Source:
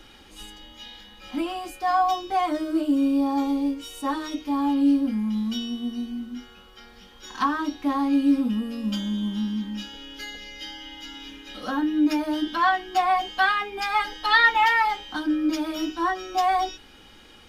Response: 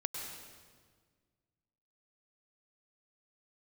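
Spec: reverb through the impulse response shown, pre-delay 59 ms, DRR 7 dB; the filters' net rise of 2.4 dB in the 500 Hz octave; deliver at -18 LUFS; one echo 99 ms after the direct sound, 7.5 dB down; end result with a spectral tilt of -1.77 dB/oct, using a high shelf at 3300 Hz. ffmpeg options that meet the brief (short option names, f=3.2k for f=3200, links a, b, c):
-filter_complex "[0:a]equalizer=f=500:t=o:g=3.5,highshelf=f=3.3k:g=3.5,aecho=1:1:99:0.422,asplit=2[a][b];[1:a]atrim=start_sample=2205,adelay=59[c];[b][c]afir=irnorm=-1:irlink=0,volume=-8.5dB[d];[a][d]amix=inputs=2:normalize=0,volume=4dB"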